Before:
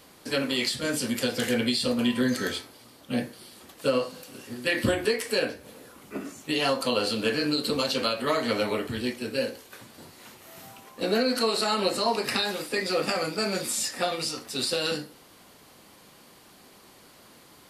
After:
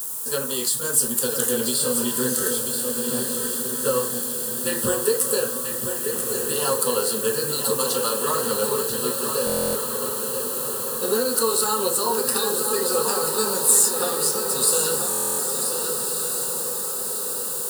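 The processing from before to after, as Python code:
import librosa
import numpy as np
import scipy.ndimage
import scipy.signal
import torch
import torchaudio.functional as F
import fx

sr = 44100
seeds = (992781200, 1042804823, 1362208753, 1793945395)

p1 = fx.peak_eq(x, sr, hz=190.0, db=-10.5, octaves=0.43)
p2 = fx.echo_diffused(p1, sr, ms=1513, feedback_pct=56, wet_db=-6.0)
p3 = fx.quant_dither(p2, sr, seeds[0], bits=6, dither='triangular')
p4 = p2 + (p3 * 10.0 ** (-3.5 / 20.0))
p5 = fx.high_shelf_res(p4, sr, hz=6700.0, db=10.0, q=1.5)
p6 = fx.fixed_phaser(p5, sr, hz=440.0, stages=8)
p7 = p6 + fx.echo_single(p6, sr, ms=987, db=-7.5, dry=0)
y = fx.buffer_glitch(p7, sr, at_s=(9.45, 15.09), block=1024, repeats=12)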